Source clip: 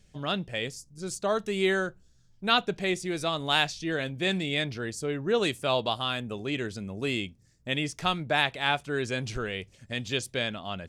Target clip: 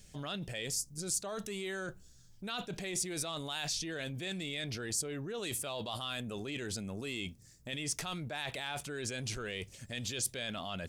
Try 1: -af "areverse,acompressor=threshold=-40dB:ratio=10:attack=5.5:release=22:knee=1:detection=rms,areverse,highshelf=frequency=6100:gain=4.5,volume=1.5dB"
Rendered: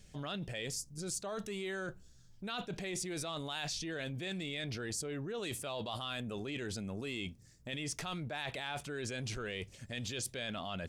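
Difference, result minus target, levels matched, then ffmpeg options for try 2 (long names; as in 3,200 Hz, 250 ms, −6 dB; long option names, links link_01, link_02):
8,000 Hz band −3.5 dB
-af "areverse,acompressor=threshold=-40dB:ratio=10:attack=5.5:release=22:knee=1:detection=rms,areverse,highshelf=frequency=6100:gain=13.5,volume=1.5dB"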